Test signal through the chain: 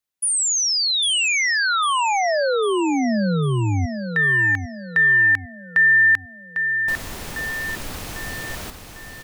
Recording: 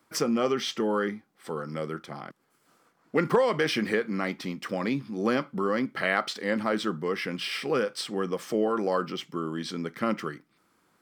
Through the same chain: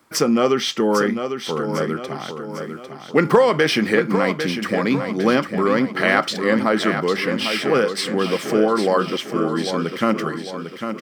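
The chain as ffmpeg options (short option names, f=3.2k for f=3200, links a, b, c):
-af "aecho=1:1:800|1600|2400|3200|4000:0.398|0.187|0.0879|0.0413|0.0194,volume=8.5dB"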